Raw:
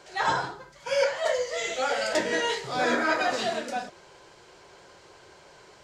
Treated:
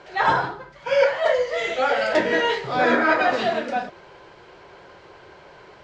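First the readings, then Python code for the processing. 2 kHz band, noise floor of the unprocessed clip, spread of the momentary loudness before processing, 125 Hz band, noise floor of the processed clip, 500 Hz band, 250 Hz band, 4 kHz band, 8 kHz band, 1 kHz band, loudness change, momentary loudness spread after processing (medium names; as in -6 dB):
+6.0 dB, -54 dBFS, 10 LU, +6.5 dB, -48 dBFS, +6.5 dB, +6.5 dB, +1.5 dB, no reading, +6.5 dB, +6.0 dB, 10 LU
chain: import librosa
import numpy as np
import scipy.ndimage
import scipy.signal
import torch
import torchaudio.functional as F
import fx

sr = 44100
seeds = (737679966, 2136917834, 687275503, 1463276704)

y = scipy.signal.sosfilt(scipy.signal.butter(2, 3000.0, 'lowpass', fs=sr, output='sos'), x)
y = y * librosa.db_to_amplitude(6.5)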